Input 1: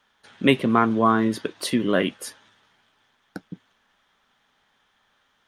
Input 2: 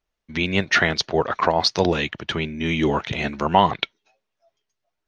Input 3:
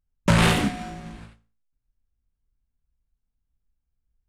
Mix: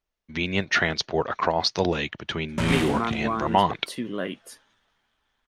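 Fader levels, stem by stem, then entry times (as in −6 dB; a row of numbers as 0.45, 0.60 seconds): −9.0, −4.0, −8.0 decibels; 2.25, 0.00, 2.30 seconds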